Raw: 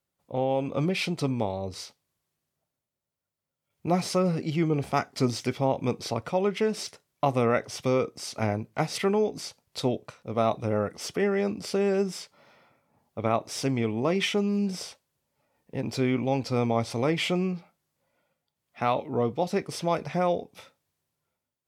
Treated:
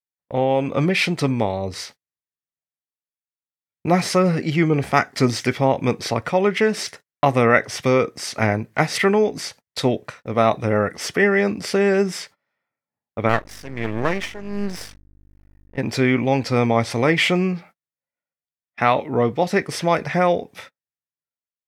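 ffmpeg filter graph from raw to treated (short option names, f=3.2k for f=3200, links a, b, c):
-filter_complex "[0:a]asettb=1/sr,asplit=3[a][b][c];[a]atrim=end=13.294[d];[b]atrim=start=13.29:end=15.78,asetpts=PTS-STARTPTS,afade=t=in:d=0.004:c=qsin,afade=t=out:st=2.486:d=0.004:c=qsin,tremolo=f=1.4:d=0.79,aeval=exprs='val(0)+0.00398*(sin(2*PI*50*n/s)+sin(2*PI*2*50*n/s)/2+sin(2*PI*3*50*n/s)/3+sin(2*PI*4*50*n/s)/4+sin(2*PI*5*50*n/s)/5)':c=same,aeval=exprs='max(val(0),0)':c=same[e];[c]atrim=start=15.776[f];[d][e]acrossfade=d=0.004:c1=hsin:c2=qsin[g];[g][f]acrossfade=d=0.004:c1=qsin:c2=hsin,agate=range=-31dB:threshold=-50dB:ratio=16:detection=peak,equalizer=f=1.8k:w=2.3:g=10.5,volume=7dB"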